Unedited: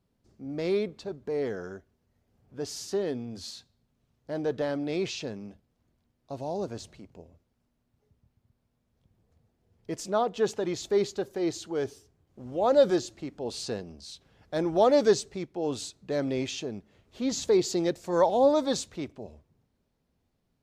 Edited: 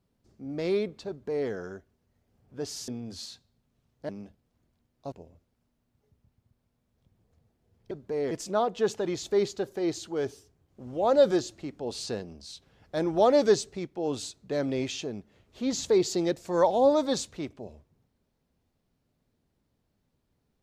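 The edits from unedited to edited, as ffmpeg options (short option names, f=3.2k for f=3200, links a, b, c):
-filter_complex "[0:a]asplit=6[a][b][c][d][e][f];[a]atrim=end=2.882[g];[b]atrim=start=3.128:end=4.342[h];[c]atrim=start=5.338:end=6.372[i];[d]atrim=start=7.108:end=9.902[j];[e]atrim=start=1.088:end=1.492[k];[f]atrim=start=9.898[l];[g][h]acrossfade=d=0.004:c1=hsin:c2=hsin[m];[m][i]acrossfade=d=0.004:c1=hsin:c2=hsin[n];[n][j]acrossfade=d=0.004:c1=hsin:c2=hsin[o];[o][k]acrossfade=d=0.004:c1=hsin:c2=hsin[p];[p][l]acrossfade=d=0.004:c1=hsin:c2=hsin"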